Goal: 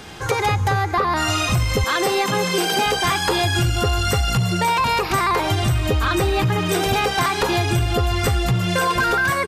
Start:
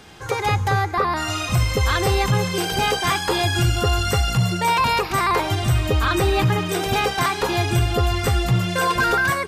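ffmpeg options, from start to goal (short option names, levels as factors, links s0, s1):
-filter_complex "[0:a]asettb=1/sr,asplit=3[s0][s1][s2];[s0]atrim=end=1.844[s3];[s1]atrim=start=1.84:end=2.86,asetpts=PTS-STARTPTS,afade=t=in:d=0.004:c=qsin,afade=t=out:st=1.016:d=0.004:c=qsin,highpass=f=190:w=0.5412,highpass=f=190:w=1.3066[s4];[s2]atrim=start=2.856[s5];[s3][s4]acrossfade=d=0.004:c1=hsin:c2=qsin[s6];[s6][s5]acrossfade=d=0.004:c1=qsin:c2=hsin,acompressor=threshold=0.0794:ratio=6,aeval=exprs='0.237*(cos(1*acos(clip(val(0)/0.237,-1,1)))-cos(1*PI/2))+0.0119*(cos(5*acos(clip(val(0)/0.237,-1,1)))-cos(5*PI/2))':c=same,aresample=32000,aresample=44100,volume=1.78"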